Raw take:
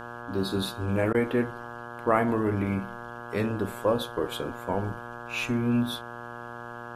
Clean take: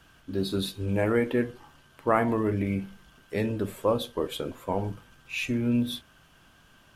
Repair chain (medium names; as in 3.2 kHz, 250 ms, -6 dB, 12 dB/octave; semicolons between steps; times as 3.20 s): de-hum 119.2 Hz, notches 14; interpolate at 1.13 s, 13 ms